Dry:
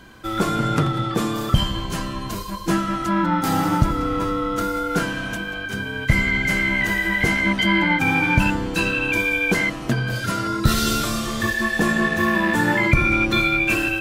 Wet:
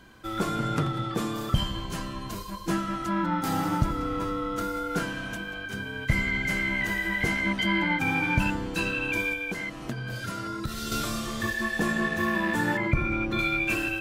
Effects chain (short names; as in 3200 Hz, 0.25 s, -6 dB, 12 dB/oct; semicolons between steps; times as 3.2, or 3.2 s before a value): 9.33–10.92 compressor 5:1, threshold -23 dBFS, peak gain reduction 11.5 dB; 12.77–13.39 high shelf 2800 Hz -11.5 dB; gain -7 dB